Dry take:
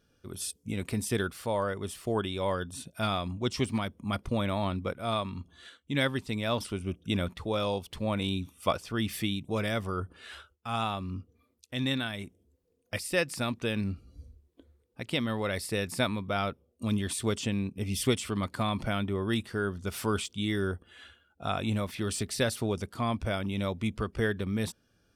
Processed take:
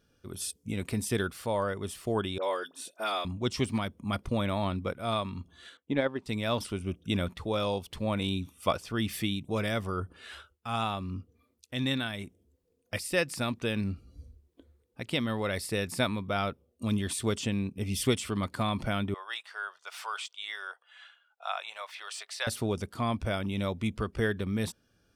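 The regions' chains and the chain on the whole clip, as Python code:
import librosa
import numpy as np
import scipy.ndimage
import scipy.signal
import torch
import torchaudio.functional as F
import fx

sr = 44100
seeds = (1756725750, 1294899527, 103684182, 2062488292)

y = fx.chain(x, sr, fx.highpass(hz=340.0, slope=24),
    fx.dispersion(late='highs', ms=49.0, hz=1900.0), at=(2.38, 3.25))
y = fx.chain(y, sr, fx.bandpass_q(hz=570.0, q=0.79),
    fx.transient(attack_db=9, sustain_db=-1), at=(5.77, 6.26))
y = fx.chain(y, sr, fx.cheby2_highpass(hz=280.0, order=4, stop_db=50),
    fx.peak_eq(hz=12000.0, db=-13.0, octaves=1.1), at=(19.14, 22.47))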